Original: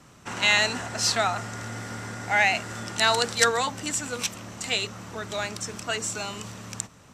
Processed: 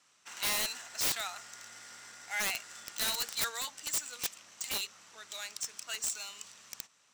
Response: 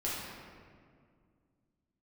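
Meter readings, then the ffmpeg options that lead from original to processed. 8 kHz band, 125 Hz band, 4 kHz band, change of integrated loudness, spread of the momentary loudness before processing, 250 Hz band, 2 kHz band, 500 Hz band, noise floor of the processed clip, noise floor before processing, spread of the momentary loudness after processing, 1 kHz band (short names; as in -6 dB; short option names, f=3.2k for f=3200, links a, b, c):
-5.5 dB, -23.0 dB, -9.0 dB, -8.5 dB, 14 LU, -18.5 dB, -14.0 dB, -19.0 dB, -68 dBFS, -52 dBFS, 17 LU, -16.0 dB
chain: -af "adynamicsmooth=sensitivity=7:basefreq=5.6k,aderivative,aeval=exprs='(mod(15*val(0)+1,2)-1)/15':c=same"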